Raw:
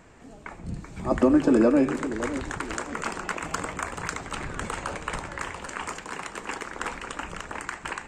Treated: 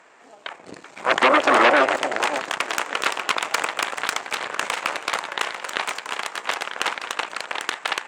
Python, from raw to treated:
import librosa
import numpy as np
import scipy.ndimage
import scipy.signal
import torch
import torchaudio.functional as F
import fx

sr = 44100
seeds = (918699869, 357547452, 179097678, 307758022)

y = fx.cheby_harmonics(x, sr, harmonics=(8,), levels_db=(-7,), full_scale_db=-8.5)
y = scipy.signal.sosfilt(scipy.signal.butter(2, 630.0, 'highpass', fs=sr, output='sos'), y)
y = fx.high_shelf(y, sr, hz=7100.0, db=-10.5)
y = F.gain(torch.from_numpy(y), 5.5).numpy()